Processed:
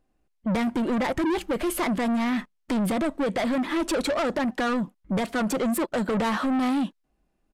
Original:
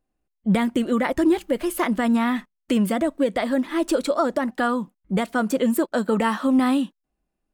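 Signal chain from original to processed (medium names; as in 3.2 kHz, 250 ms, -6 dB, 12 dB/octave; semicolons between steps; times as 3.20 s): treble shelf 6.6 kHz -6.5 dB; in parallel at +1 dB: peak limiter -18.5 dBFS, peak gain reduction 7 dB; on the sum: saturation -22 dBFS, distortion -8 dB; resampled via 32 kHz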